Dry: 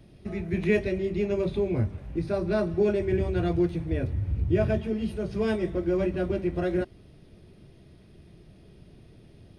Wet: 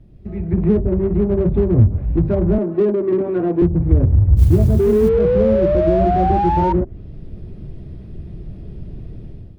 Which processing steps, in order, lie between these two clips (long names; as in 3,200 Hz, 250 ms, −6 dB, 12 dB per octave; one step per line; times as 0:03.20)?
0:02.58–0:03.62: high-pass filter 230 Hz 24 dB per octave
treble cut that deepens with the level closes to 470 Hz, closed at −21.5 dBFS
0:04.79–0:06.73: sound drawn into the spectrogram rise 390–940 Hz −22 dBFS
automatic gain control gain up to 13 dB
bit-depth reduction 12 bits, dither triangular
spectral tilt −3.5 dB per octave
0:04.36–0:05.09: noise that follows the level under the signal 33 dB
in parallel at −4 dB: soft clipping −16.5 dBFS, distortion −4 dB
on the sum: level −9 dB